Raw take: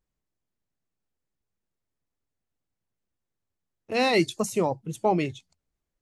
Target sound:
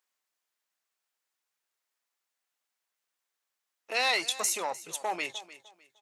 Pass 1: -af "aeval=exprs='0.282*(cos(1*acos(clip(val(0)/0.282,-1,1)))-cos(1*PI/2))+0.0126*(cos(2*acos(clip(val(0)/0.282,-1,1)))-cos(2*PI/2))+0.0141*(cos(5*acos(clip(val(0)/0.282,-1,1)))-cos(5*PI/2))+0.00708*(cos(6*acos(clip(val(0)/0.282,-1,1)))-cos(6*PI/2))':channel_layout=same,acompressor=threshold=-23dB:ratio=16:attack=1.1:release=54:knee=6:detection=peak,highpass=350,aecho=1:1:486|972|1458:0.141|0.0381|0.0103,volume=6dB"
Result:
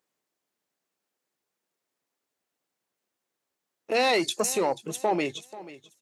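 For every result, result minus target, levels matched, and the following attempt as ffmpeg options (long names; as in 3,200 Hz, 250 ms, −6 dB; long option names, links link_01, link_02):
250 Hz band +12.5 dB; echo 184 ms late
-af "aeval=exprs='0.282*(cos(1*acos(clip(val(0)/0.282,-1,1)))-cos(1*PI/2))+0.0126*(cos(2*acos(clip(val(0)/0.282,-1,1)))-cos(2*PI/2))+0.0141*(cos(5*acos(clip(val(0)/0.282,-1,1)))-cos(5*PI/2))+0.00708*(cos(6*acos(clip(val(0)/0.282,-1,1)))-cos(6*PI/2))':channel_layout=same,acompressor=threshold=-23dB:ratio=16:attack=1.1:release=54:knee=6:detection=peak,highpass=1000,aecho=1:1:486|972|1458:0.141|0.0381|0.0103,volume=6dB"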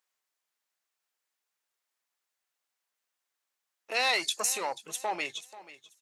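echo 184 ms late
-af "aeval=exprs='0.282*(cos(1*acos(clip(val(0)/0.282,-1,1)))-cos(1*PI/2))+0.0126*(cos(2*acos(clip(val(0)/0.282,-1,1)))-cos(2*PI/2))+0.0141*(cos(5*acos(clip(val(0)/0.282,-1,1)))-cos(5*PI/2))+0.00708*(cos(6*acos(clip(val(0)/0.282,-1,1)))-cos(6*PI/2))':channel_layout=same,acompressor=threshold=-23dB:ratio=16:attack=1.1:release=54:knee=6:detection=peak,highpass=1000,aecho=1:1:302|604|906:0.141|0.0381|0.0103,volume=6dB"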